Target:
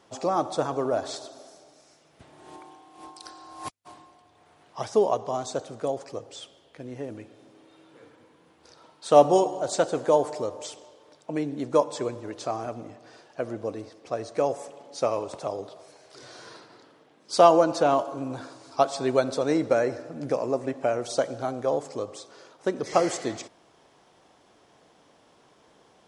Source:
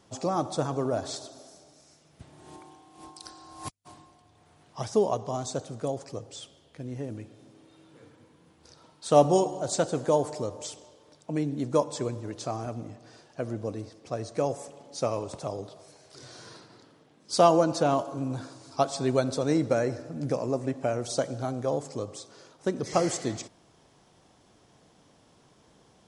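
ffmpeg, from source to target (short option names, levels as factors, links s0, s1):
-af "bass=f=250:g=-11,treble=f=4000:g=-6,volume=1.58"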